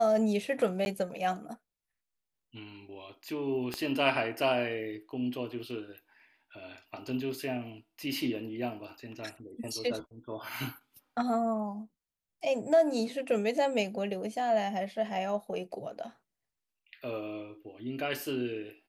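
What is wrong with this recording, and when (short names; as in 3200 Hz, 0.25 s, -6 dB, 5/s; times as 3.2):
0.85–0.86 gap 11 ms
3.74 pop -19 dBFS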